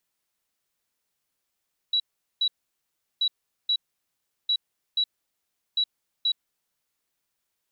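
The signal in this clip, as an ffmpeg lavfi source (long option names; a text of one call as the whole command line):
ffmpeg -f lavfi -i "aevalsrc='0.1*sin(2*PI*3910*t)*clip(min(mod(mod(t,1.28),0.48),0.07-mod(mod(t,1.28),0.48))/0.005,0,1)*lt(mod(t,1.28),0.96)':duration=5.12:sample_rate=44100" out.wav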